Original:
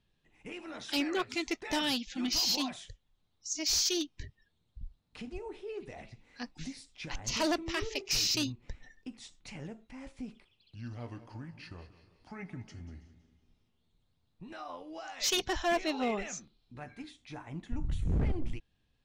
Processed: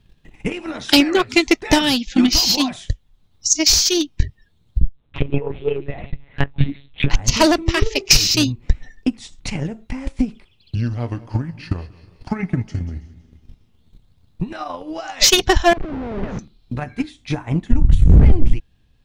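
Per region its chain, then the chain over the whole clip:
4.82–7.1 comb 6.5 ms, depth 47% + monotone LPC vocoder at 8 kHz 140 Hz
15.73–16.39 compressor, threshold -35 dBFS + Schmitt trigger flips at -42 dBFS + tape spacing loss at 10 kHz 42 dB
whole clip: low shelf 190 Hz +8.5 dB; transient shaper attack +11 dB, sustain -2 dB; maximiser +13 dB; gain -1 dB

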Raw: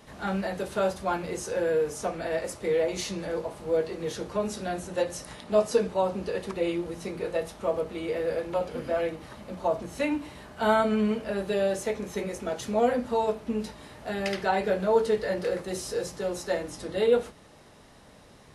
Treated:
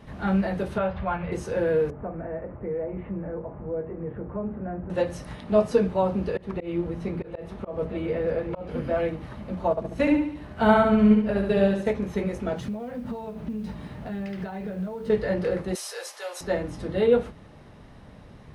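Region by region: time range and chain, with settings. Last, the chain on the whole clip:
0.78–1.32 LPF 3100 Hz 24 dB/oct + bell 300 Hz -14.5 dB 0.88 oct + upward compressor, threshold -31 dBFS
1.9–4.9 Bessel low-pass 1200 Hz, order 8 + compressor 1.5:1, threshold -41 dBFS
6.37–8.69 reverse delay 0.646 s, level -12.5 dB + high shelf 4000 Hz -8 dB + auto swell 0.184 s
9.7–11.93 transient shaper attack +3 dB, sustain -8 dB + feedback echo 71 ms, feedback 43%, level -4.5 dB
12.56–15.1 bell 180 Hz +7.5 dB 0.67 oct + modulation noise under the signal 22 dB + compressor 12:1, threshold -34 dBFS
15.75–16.41 HPF 570 Hz 24 dB/oct + tilt +3.5 dB/oct
whole clip: tone controls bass +9 dB, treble -11 dB; notch 7300 Hz, Q 17; gain +1.5 dB

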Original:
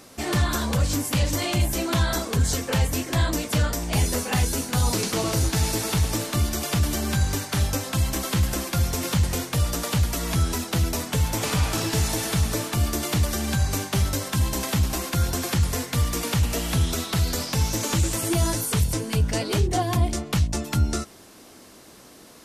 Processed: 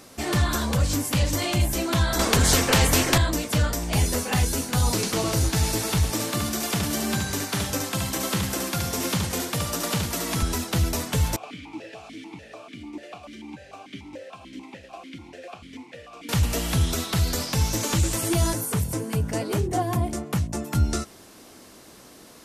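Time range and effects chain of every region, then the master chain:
2.19–3.18 tilt -2 dB/oct + spectral compressor 2:1
6.1–10.43 HPF 150 Hz + echo 72 ms -5 dB
11.36–16.29 delta modulation 64 kbps, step -27.5 dBFS + vowel sequencer 6.8 Hz
18.53–20.75 HPF 97 Hz + bell 3900 Hz -9 dB 1.7 oct
whole clip: dry

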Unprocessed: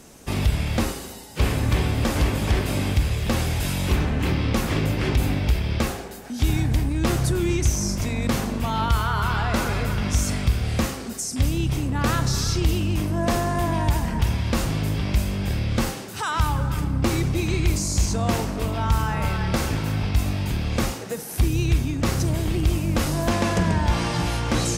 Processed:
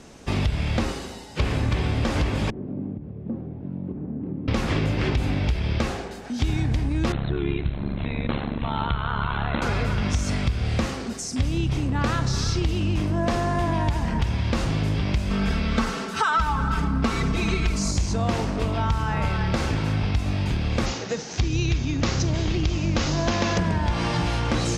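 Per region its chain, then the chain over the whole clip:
2.5–4.48 low shelf 380 Hz +10 dB + compressor 3:1, threshold -13 dBFS + ladder band-pass 280 Hz, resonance 25%
7.12–9.62 brick-wall FIR low-pass 4200 Hz + AM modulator 70 Hz, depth 85%
15.3–17.91 bell 1300 Hz +8 dB 0.54 oct + comb 4.5 ms, depth 97%
20.86–23.58 steep low-pass 7000 Hz 72 dB/oct + high shelf 3600 Hz +9.5 dB
whole clip: LPF 5600 Hz 12 dB/oct; compressor, threshold -21 dBFS; gain +2 dB

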